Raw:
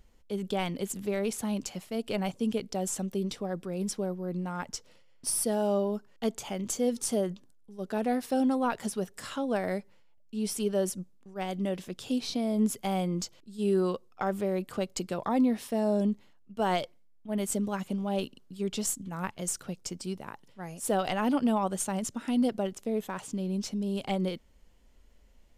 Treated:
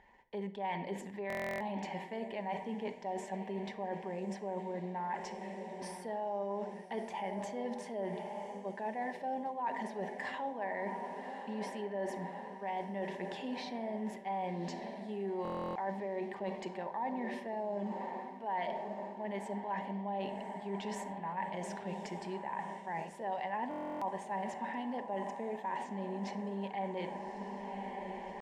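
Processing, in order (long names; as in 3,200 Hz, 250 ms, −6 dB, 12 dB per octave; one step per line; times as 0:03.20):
camcorder AGC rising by 8.7 dB per second
in parallel at +1 dB: brickwall limiter −29.5 dBFS, peak gain reduction 12 dB
on the sum: dynamic equaliser 1,400 Hz, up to −5 dB, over −48 dBFS, Q 2
tempo change 0.9×
pair of resonant band-passes 1,300 Hz, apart 0.98 octaves
spectral tilt −2 dB per octave
feedback delay with all-pass diffusion 1,163 ms, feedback 64%, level −13 dB
rectangular room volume 2,300 cubic metres, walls furnished, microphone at 1.2 metres
reversed playback
downward compressor 4 to 1, threshold −47 dBFS, peak gain reduction 15 dB
reversed playback
buffer that repeats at 0:01.28/0:15.43/0:23.69, samples 1,024, times 13
level +10.5 dB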